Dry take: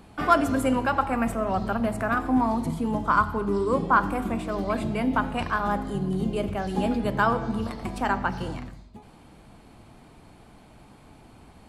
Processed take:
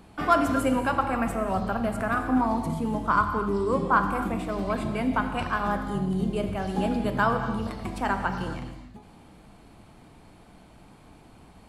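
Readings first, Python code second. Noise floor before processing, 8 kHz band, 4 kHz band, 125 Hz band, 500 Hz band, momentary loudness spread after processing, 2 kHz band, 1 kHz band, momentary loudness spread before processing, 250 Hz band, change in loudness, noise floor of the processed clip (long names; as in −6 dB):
−52 dBFS, −1.0 dB, −1.0 dB, −0.5 dB, −1.0 dB, 7 LU, −1.0 dB, −1.0 dB, 7 LU, −1.0 dB, −1.0 dB, −52 dBFS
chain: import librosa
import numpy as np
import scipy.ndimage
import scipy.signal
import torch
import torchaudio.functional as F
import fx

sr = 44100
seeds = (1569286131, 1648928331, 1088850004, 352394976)

y = fx.rev_gated(x, sr, seeds[0], gate_ms=300, shape='flat', drr_db=7.5)
y = y * 10.0 ** (-1.5 / 20.0)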